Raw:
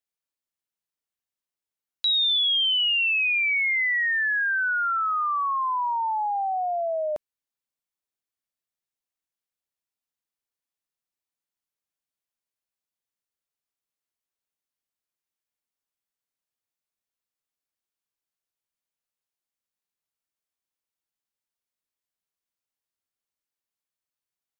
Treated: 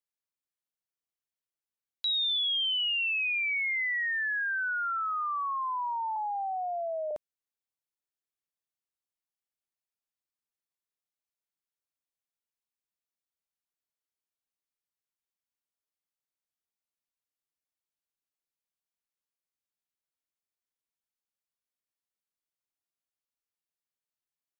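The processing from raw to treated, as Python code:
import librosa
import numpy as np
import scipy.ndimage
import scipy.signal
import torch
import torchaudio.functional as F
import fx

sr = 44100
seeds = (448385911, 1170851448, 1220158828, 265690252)

y = fx.highpass(x, sr, hz=380.0, slope=24, at=(6.16, 7.11))
y = y * 10.0 ** (-6.5 / 20.0)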